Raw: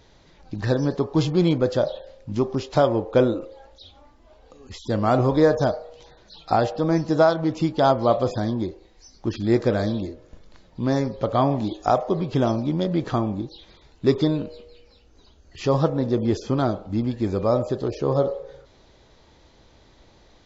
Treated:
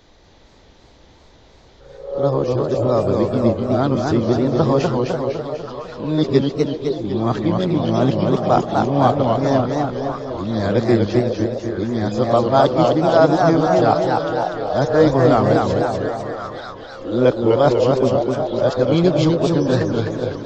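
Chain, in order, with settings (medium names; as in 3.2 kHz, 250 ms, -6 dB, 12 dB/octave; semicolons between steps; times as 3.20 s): reverse the whole clip; repeats whose band climbs or falls 539 ms, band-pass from 550 Hz, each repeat 1.4 oct, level -4.5 dB; modulated delay 250 ms, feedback 56%, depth 183 cents, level -3.5 dB; trim +3 dB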